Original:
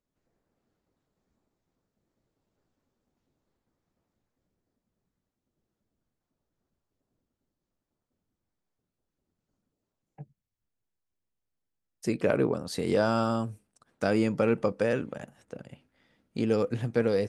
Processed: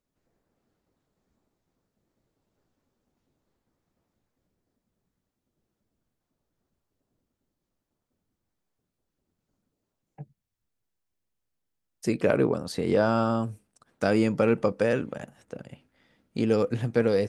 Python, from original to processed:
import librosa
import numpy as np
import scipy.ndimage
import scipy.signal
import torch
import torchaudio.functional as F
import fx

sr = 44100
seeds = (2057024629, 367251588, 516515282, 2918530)

y = fx.high_shelf(x, sr, hz=4500.0, db=-10.0, at=(12.72, 13.43))
y = y * librosa.db_to_amplitude(2.5)